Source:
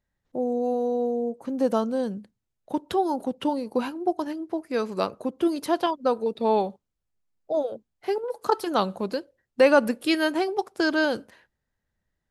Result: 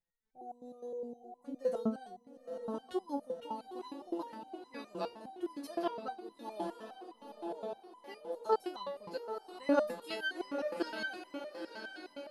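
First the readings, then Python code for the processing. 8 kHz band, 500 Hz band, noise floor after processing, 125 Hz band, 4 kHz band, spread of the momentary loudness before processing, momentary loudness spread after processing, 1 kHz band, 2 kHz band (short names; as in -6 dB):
-14.0 dB, -13.5 dB, -65 dBFS, n/a, -13.0 dB, 9 LU, 15 LU, -13.0 dB, -12.0 dB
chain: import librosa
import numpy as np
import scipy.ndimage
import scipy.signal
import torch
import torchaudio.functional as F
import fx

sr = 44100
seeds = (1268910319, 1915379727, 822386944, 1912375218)

y = fx.echo_diffused(x, sr, ms=943, feedback_pct=51, wet_db=-6.5)
y = fx.resonator_held(y, sr, hz=9.7, low_hz=170.0, high_hz=1000.0)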